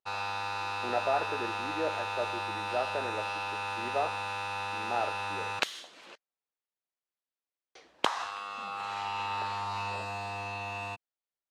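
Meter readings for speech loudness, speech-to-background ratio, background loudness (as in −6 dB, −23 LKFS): −36.0 LKFS, −1.5 dB, −34.5 LKFS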